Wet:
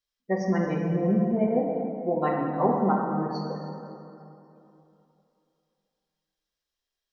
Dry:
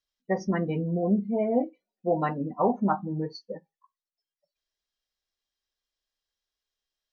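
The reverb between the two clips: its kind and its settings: plate-style reverb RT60 2.9 s, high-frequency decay 0.55×, DRR -1 dB; trim -2 dB

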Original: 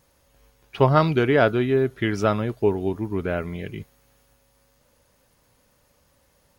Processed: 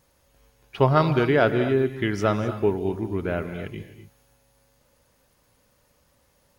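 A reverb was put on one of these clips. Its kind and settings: gated-style reverb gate 280 ms rising, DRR 10 dB; trim -1.5 dB

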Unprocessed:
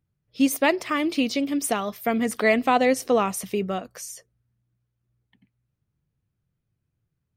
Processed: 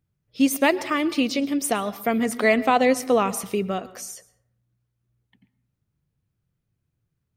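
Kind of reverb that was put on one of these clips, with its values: plate-style reverb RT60 0.7 s, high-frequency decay 0.45×, pre-delay 100 ms, DRR 17 dB; trim +1 dB

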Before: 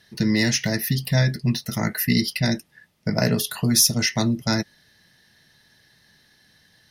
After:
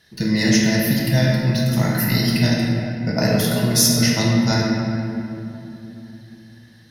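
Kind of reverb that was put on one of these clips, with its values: simulated room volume 140 m³, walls hard, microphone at 0.65 m; trim -1 dB

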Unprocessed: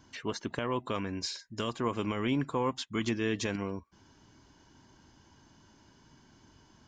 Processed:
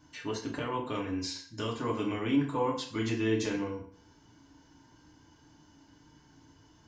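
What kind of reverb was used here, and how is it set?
FDN reverb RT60 0.51 s, low-frequency decay 1.1×, high-frequency decay 0.85×, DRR -2.5 dB; trim -5 dB

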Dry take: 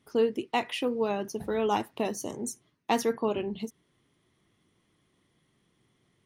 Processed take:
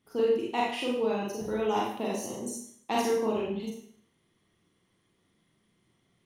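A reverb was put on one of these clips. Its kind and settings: Schroeder reverb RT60 0.6 s, combs from 33 ms, DRR -4 dB; trim -6 dB

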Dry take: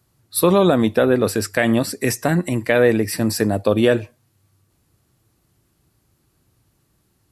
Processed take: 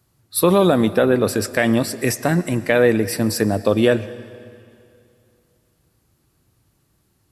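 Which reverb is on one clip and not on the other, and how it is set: algorithmic reverb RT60 2.5 s, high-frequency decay 0.95×, pre-delay 75 ms, DRR 16.5 dB

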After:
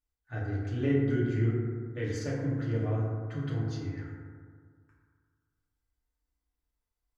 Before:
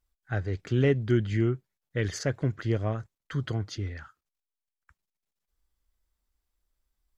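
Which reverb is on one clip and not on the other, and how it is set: FDN reverb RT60 1.9 s, low-frequency decay 1.05×, high-frequency decay 0.3×, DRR -7 dB; trim -12.5 dB

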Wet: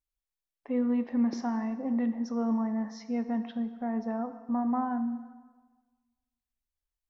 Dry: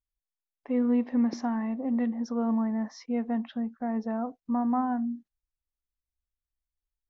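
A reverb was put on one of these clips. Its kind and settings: plate-style reverb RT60 1.4 s, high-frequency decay 0.85×, DRR 9.5 dB; trim -2 dB

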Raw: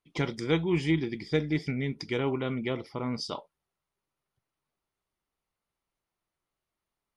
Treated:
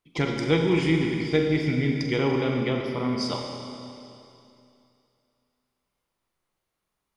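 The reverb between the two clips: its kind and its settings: Schroeder reverb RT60 2.7 s, combs from 32 ms, DRR 1.5 dB; trim +3.5 dB

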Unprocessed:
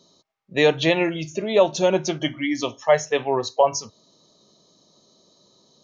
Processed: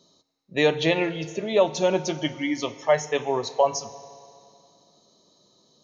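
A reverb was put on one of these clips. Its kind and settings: FDN reverb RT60 2.5 s, low-frequency decay 0.8×, high-frequency decay 0.85×, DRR 13.5 dB; trim -3 dB

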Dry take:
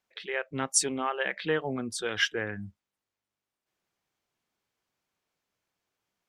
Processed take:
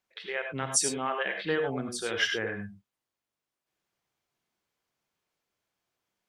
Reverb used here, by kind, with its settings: gated-style reverb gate 120 ms rising, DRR 4.5 dB; trim -1.5 dB

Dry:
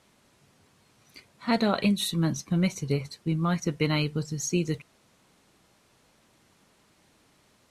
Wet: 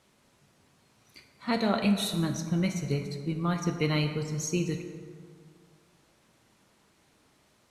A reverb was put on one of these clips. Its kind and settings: plate-style reverb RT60 2.1 s, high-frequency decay 0.5×, DRR 5 dB; trim -3 dB

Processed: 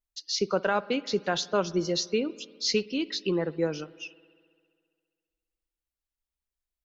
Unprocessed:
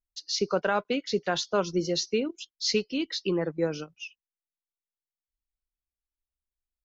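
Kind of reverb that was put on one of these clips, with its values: spring tank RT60 2 s, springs 57 ms, chirp 75 ms, DRR 19 dB

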